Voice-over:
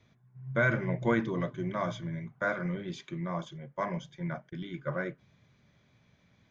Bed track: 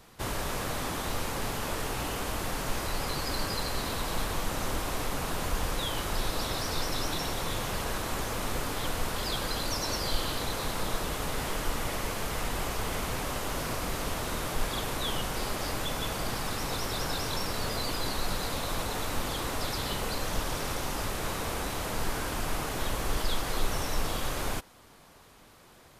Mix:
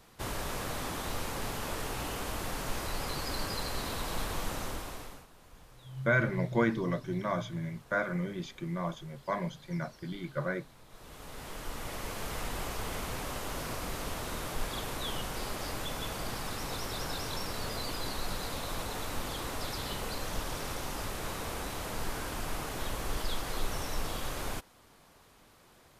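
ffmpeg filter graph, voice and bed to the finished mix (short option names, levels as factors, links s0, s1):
-filter_complex "[0:a]adelay=5500,volume=1[s0];[1:a]volume=7.5,afade=t=out:st=4.48:d=0.79:silence=0.0794328,afade=t=in:st=10.88:d=1.41:silence=0.0891251[s1];[s0][s1]amix=inputs=2:normalize=0"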